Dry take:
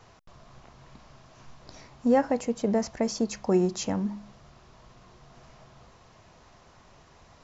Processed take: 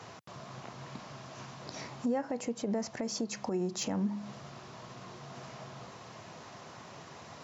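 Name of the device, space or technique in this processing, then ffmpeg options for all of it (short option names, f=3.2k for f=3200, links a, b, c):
podcast mastering chain: -af "highpass=f=110:w=0.5412,highpass=f=110:w=1.3066,deesser=0.7,acompressor=threshold=-38dB:ratio=3,alimiter=level_in=7.5dB:limit=-24dB:level=0:latency=1:release=118,volume=-7.5dB,volume=8dB" -ar 44100 -c:a libmp3lame -b:a 96k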